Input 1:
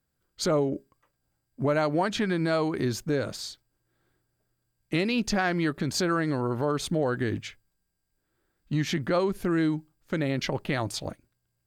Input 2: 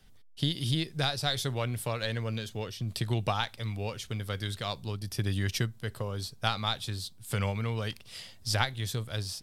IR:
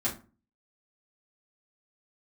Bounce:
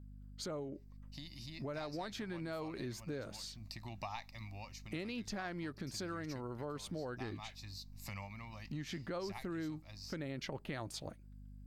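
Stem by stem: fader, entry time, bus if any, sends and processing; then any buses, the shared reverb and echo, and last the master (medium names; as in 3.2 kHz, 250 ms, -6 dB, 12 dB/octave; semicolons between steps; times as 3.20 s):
-5.0 dB, 0.00 s, no send, gain riding 2 s; hum 50 Hz, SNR 18 dB
+1.0 dB, 0.75 s, no send, peaking EQ 130 Hz -12.5 dB 0.91 oct; static phaser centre 2.2 kHz, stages 8; auto duck -8 dB, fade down 0.65 s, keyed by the first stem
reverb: none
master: compression 2:1, threshold -48 dBFS, peak gain reduction 12.5 dB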